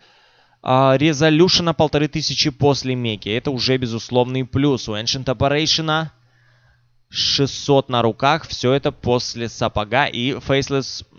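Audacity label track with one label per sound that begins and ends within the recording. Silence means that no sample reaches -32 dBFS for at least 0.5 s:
0.640000	6.080000	sound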